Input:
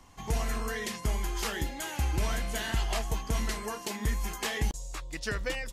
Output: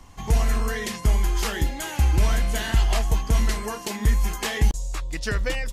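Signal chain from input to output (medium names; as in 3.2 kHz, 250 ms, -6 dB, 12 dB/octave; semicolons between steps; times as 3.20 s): bass shelf 120 Hz +7 dB; trim +5 dB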